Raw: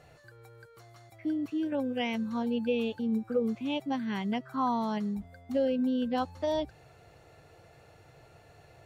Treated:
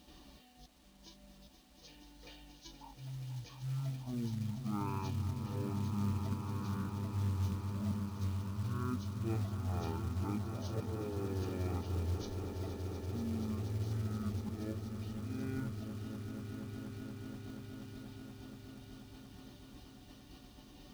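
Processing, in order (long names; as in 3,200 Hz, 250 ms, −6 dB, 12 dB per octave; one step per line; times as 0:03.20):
dynamic equaliser 490 Hz, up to +5 dB, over −46 dBFS, Q 7.5
reverb reduction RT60 1 s
noise gate −58 dBFS, range −6 dB
volume swells 373 ms
reversed playback
downward compressor 8 to 1, threshold −37 dBFS, peak gain reduction 11 dB
reversed playback
high-pass filter 72 Hz 6 dB per octave
echo that builds up and dies away 101 ms, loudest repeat 5, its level −10 dB
change of speed 0.423×
high shelf with overshoot 2,500 Hz +11 dB, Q 1.5
log-companded quantiser 6 bits
level +1.5 dB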